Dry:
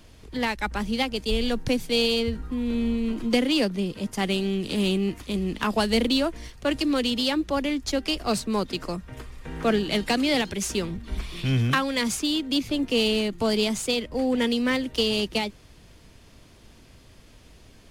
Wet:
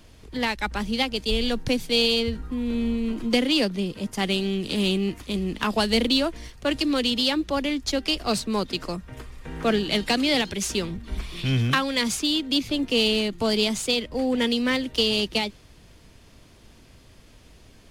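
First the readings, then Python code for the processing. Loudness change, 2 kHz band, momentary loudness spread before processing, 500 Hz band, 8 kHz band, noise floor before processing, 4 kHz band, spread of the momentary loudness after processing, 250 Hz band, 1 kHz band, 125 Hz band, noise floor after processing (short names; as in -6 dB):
+1.0 dB, +1.5 dB, 7 LU, 0.0 dB, +1.0 dB, -52 dBFS, +3.5 dB, 8 LU, 0.0 dB, 0.0 dB, 0.0 dB, -52 dBFS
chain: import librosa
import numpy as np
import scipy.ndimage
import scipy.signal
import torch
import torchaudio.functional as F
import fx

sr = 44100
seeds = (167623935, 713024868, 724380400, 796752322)

y = fx.dynamic_eq(x, sr, hz=3800.0, q=1.1, threshold_db=-41.0, ratio=4.0, max_db=4)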